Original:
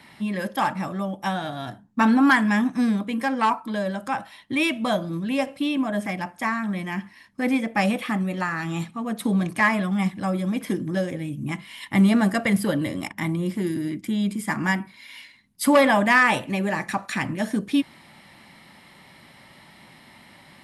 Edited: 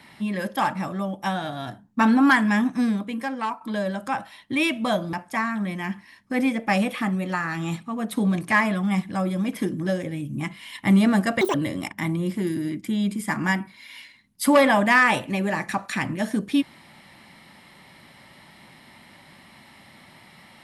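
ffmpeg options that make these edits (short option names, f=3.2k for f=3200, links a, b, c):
-filter_complex "[0:a]asplit=5[a][b][c][d][e];[a]atrim=end=3.61,asetpts=PTS-STARTPTS,afade=t=out:st=2.72:d=0.89:silence=0.354813[f];[b]atrim=start=3.61:end=5.132,asetpts=PTS-STARTPTS,afade=t=in:d=0.004:c=hsin:silence=0.354813[g];[c]atrim=start=6.208:end=12.494[h];[d]atrim=start=12.49:end=12.74,asetpts=PTS-STARTPTS,asetrate=83349,aresample=44100,atrim=end_sample=5833,asetpts=PTS-STARTPTS[i];[e]atrim=start=12.736[j];[f][g]concat=n=2:v=0:a=1[k];[k][h]acrossfade=d=0.004:c1=hsin:c2=hsin[l];[l][i]acrossfade=d=0.004:c1=hsin:c2=hsin[m];[m][j]acrossfade=d=0.004:c1=hsin:c2=hsin"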